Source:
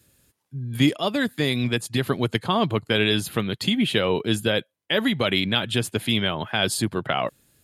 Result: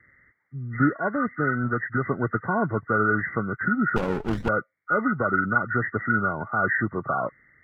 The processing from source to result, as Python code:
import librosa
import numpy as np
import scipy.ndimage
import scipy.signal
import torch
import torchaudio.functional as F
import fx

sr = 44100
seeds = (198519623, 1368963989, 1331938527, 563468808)

y = fx.freq_compress(x, sr, knee_hz=1100.0, ratio=4.0)
y = fx.running_max(y, sr, window=33, at=(3.96, 4.49))
y = y * librosa.db_to_amplitude(-2.5)